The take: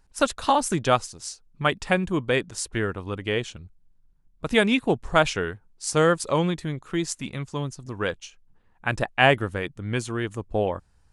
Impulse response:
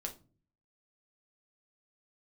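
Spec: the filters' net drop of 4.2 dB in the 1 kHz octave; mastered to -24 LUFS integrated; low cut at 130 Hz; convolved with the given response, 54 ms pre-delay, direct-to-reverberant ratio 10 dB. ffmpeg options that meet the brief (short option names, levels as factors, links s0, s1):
-filter_complex "[0:a]highpass=130,equalizer=f=1000:t=o:g=-6,asplit=2[s0][s1];[1:a]atrim=start_sample=2205,adelay=54[s2];[s1][s2]afir=irnorm=-1:irlink=0,volume=0.355[s3];[s0][s3]amix=inputs=2:normalize=0,volume=1.26"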